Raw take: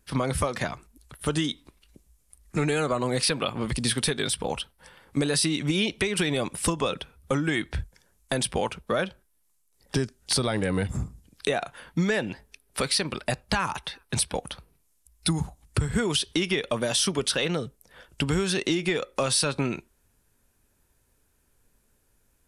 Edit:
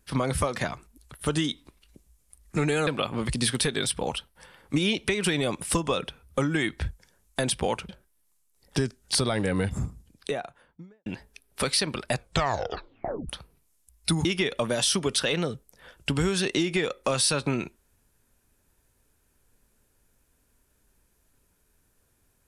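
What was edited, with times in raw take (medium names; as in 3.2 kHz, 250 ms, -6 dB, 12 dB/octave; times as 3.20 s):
2.87–3.30 s: delete
5.19–5.69 s: delete
8.82–9.07 s: delete
11.03–12.24 s: studio fade out
13.32 s: tape stop 1.15 s
15.43–16.37 s: delete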